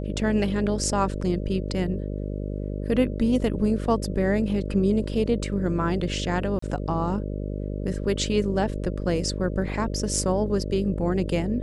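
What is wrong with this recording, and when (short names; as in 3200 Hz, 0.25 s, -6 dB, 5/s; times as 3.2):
buzz 50 Hz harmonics 12 -30 dBFS
6.59–6.62 gap 34 ms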